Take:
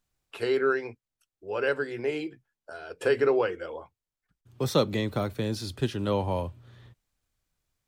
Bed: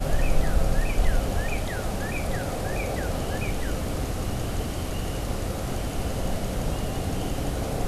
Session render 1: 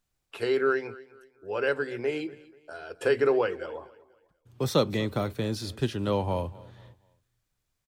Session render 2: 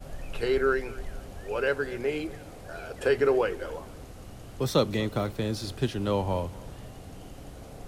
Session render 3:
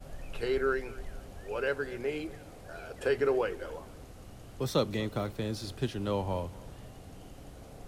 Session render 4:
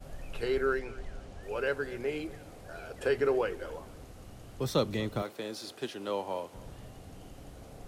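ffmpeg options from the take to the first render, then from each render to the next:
-af "aecho=1:1:243|486|729:0.0944|0.0321|0.0109"
-filter_complex "[1:a]volume=-16dB[a];[0:a][a]amix=inputs=2:normalize=0"
-af "volume=-4.5dB"
-filter_complex "[0:a]asettb=1/sr,asplit=3[a][b][c];[a]atrim=end=0.794[d];[b]atrim=start=0.79:end=1.43,asetpts=PTS-STARTPTS,afade=t=in:d=0.004:c=qsin,afade=t=out:st=0.636:d=0.004:c=qsin,lowpass=7.6k[e];[c]atrim=start=1.426[f];[d][e]acrossfade=d=0.004:c1=hsin:c2=qsin[g];[g][f]acrossfade=d=0.004:c1=qsin:c2=hsin,asettb=1/sr,asplit=3[h][i][j];[h]atrim=end=5.224[k];[i]atrim=start=5.22:end=6.54,asetpts=PTS-STARTPTS,afade=t=in:d=0.004:c=qsin,afade=t=out:st=1.316:d=0.004:c=qsin,highpass=340[l];[j]atrim=start=6.536[m];[k][l]acrossfade=d=0.004:c1=hsin:c2=qsin[n];[n][m]acrossfade=d=0.004:c1=qsin:c2=hsin"

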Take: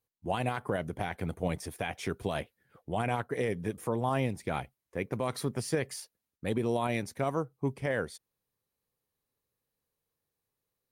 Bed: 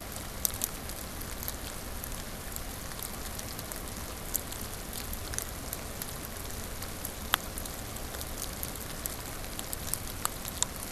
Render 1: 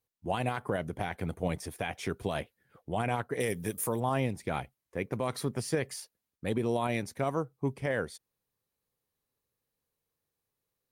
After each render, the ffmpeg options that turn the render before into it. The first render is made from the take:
-filter_complex "[0:a]asettb=1/sr,asplit=3[a][b][c];[a]atrim=end=3.404[d];[b]atrim=start=3.4:end=4,asetpts=PTS-STARTPTS,afade=t=in:d=0.004:c=qsin,afade=t=out:st=0.596:d=0.004:c=qsin,aemphasis=mode=production:type=75fm[e];[c]atrim=start=3.996[f];[d][e]acrossfade=d=0.004:c1=hsin:c2=qsin[g];[g][f]acrossfade=d=0.004:c1=qsin:c2=hsin"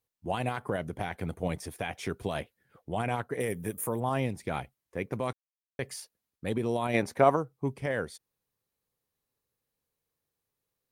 -filter_complex "[0:a]asettb=1/sr,asplit=3[a][b][c];[a]atrim=end=3.364[d];[b]atrim=start=3.36:end=4.06,asetpts=PTS-STARTPTS,afade=t=in:d=0.004:c=qsin,afade=t=out:st=0.696:d=0.004:c=qsin,equalizer=f=4.7k:t=o:w=1.1:g=-10.5[e];[c]atrim=start=4.056[f];[d][e]acrossfade=d=0.004:c1=hsin:c2=qsin[g];[g][f]acrossfade=d=0.004:c1=qsin:c2=hsin,asplit=3[h][i][j];[h]afade=t=out:st=6.93:d=0.02[k];[i]equalizer=f=800:w=0.36:g=11.5,afade=t=in:st=6.93:d=0.02,afade=t=out:st=7.35:d=0.02[l];[j]afade=t=in:st=7.35:d=0.02[m];[k][l][m]amix=inputs=3:normalize=0,asplit=3[n][o][p];[n]atrim=end=5.33,asetpts=PTS-STARTPTS,afade=t=out:st=5.326:d=0.004:c=hsin[q];[o]atrim=start=5.33:end=5.79,asetpts=PTS-STARTPTS,volume=0[r];[p]atrim=start=5.79,asetpts=PTS-STARTPTS,afade=t=in:d=0.004:c=hsin[s];[q][r][s]concat=n=3:v=0:a=1"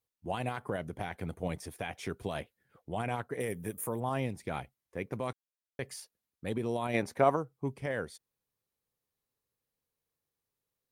-af "volume=-3.5dB"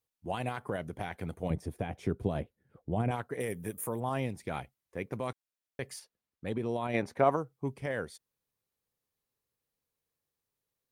-filter_complex "[0:a]asettb=1/sr,asplit=3[a][b][c];[a]atrim=end=1.504[d];[b]atrim=start=1.5:end=3.11,asetpts=PTS-STARTPTS,afade=t=in:d=0.004:c=qsin,afade=t=out:st=1.606:d=0.004:c=qsin,tiltshelf=f=770:g=8.5[e];[c]atrim=start=3.106[f];[d][e]acrossfade=d=0.004:c1=hsin:c2=qsin[g];[g][f]acrossfade=d=0.004:c1=qsin:c2=hsin,asettb=1/sr,asplit=3[h][i][j];[h]atrim=end=5.994[k];[i]atrim=start=5.99:end=7.32,asetpts=PTS-STARTPTS,afade=t=in:d=0.004:c=qsin,afade=t=out:st=1.326:d=0.004:c=qsin,highshelf=f=5.9k:g=-10[l];[j]atrim=start=7.316[m];[k][l]acrossfade=d=0.004:c1=hsin:c2=qsin[n];[n][m]acrossfade=d=0.004:c1=qsin:c2=hsin"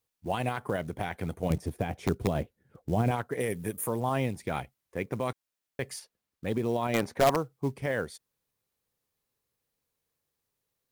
-filter_complex "[0:a]asplit=2[a][b];[b]aeval=exprs='(mod(8.41*val(0)+1,2)-1)/8.41':c=same,volume=-4dB[c];[a][c]amix=inputs=2:normalize=0,acrusher=bits=7:mode=log:mix=0:aa=0.000001"

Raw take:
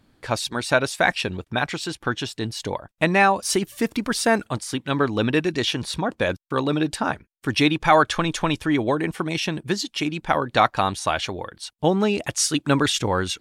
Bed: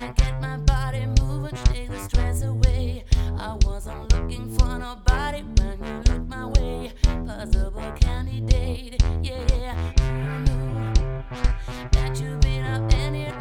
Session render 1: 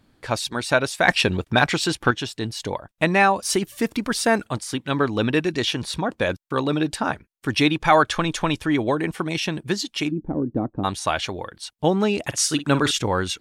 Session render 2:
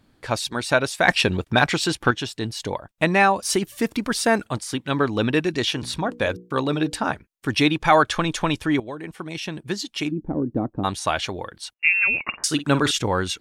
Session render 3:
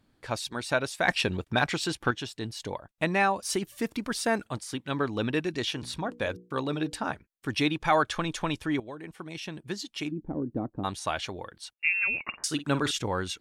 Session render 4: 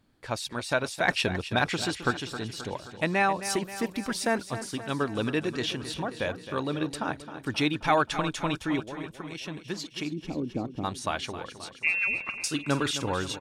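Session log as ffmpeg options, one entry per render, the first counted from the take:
-filter_complex "[0:a]asettb=1/sr,asplit=3[a][b][c];[a]atrim=end=1.084[d];[b]atrim=start=1.08:end=2.11,asetpts=PTS-STARTPTS,afade=t=in:d=0.004:c=qsin,afade=t=out:st=1.026:d=0.004:c=qsin,acontrast=66[e];[c]atrim=start=2.106[f];[d][e]acrossfade=d=0.004:c1=hsin:c2=qsin[g];[g][f]acrossfade=d=0.004:c1=qsin:c2=hsin,asplit=3[h][i][j];[h]afade=t=out:st=10.1:d=0.02[k];[i]lowpass=f=300:t=q:w=2.6,afade=t=in:st=10.1:d=0.02,afade=t=out:st=10.83:d=0.02[l];[j]afade=t=in:st=10.83:d=0.02[m];[k][l][m]amix=inputs=3:normalize=0,asettb=1/sr,asplit=3[n][o][p];[n]atrim=end=12.254[q];[o]atrim=start=12.25:end=12.91,asetpts=PTS-STARTPTS,afade=t=in:d=0.004:c=qsin,afade=t=out:st=0.656:d=0.004:c=qsin,asplit=2[r][s];[s]adelay=49,volume=-13dB[t];[r][t]amix=inputs=2:normalize=0,atrim=end_sample=29106[u];[p]atrim=start=12.906[v];[q][u]acrossfade=d=0.004:c1=hsin:c2=qsin[w];[w][v]acrossfade=d=0.004:c1=qsin:c2=hsin"
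-filter_complex "[0:a]asettb=1/sr,asplit=3[a][b][c];[a]atrim=end=5.724[d];[b]atrim=start=5.72:end=7.06,asetpts=PTS-STARTPTS,afade=t=in:d=0.004:c=qsin,afade=t=out:st=1.336:d=0.004:c=qsin,bandreject=f=60:t=h:w=6,bandreject=f=120:t=h:w=6,bandreject=f=180:t=h:w=6,bandreject=f=240:t=h:w=6,bandreject=f=300:t=h:w=6,bandreject=f=360:t=h:w=6,bandreject=f=420:t=h:w=6,bandreject=f=480:t=h:w=6[e];[c]atrim=start=7.056[f];[d][e]acrossfade=d=0.004:c1=hsin:c2=qsin[g];[g][f]acrossfade=d=0.004:c1=qsin:c2=hsin,asettb=1/sr,asplit=3[h][i][j];[h]atrim=end=11.744[k];[i]atrim=start=11.74:end=12.44,asetpts=PTS-STARTPTS,afade=t=in:d=0.004:c=qsin,afade=t=out:st=0.696:d=0.004:c=qsin,lowpass=f=2.5k:t=q:w=0.5098,lowpass=f=2.5k:t=q:w=0.6013,lowpass=f=2.5k:t=q:w=0.9,lowpass=f=2.5k:t=q:w=2.563,afreqshift=-2900[l];[j]atrim=start=12.436[m];[k][l]acrossfade=d=0.004:c1=hsin:c2=qsin[n];[n][m]acrossfade=d=0.004:c1=qsin:c2=hsin,asplit=2[o][p];[o]atrim=end=8.8,asetpts=PTS-STARTPTS,afade=t=out:st=8.796:d=0.004:c=hsin:silence=0.199526[q];[p]atrim=start=8.8,asetpts=PTS-STARTPTS,afade=t=in:d=1.51:silence=0.199526[r];[q][r]concat=n=2:v=0:a=1"
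-af "volume=-7.5dB"
-af "aecho=1:1:265|530|795|1060|1325|1590|1855:0.251|0.148|0.0874|0.0516|0.0304|0.018|0.0106"

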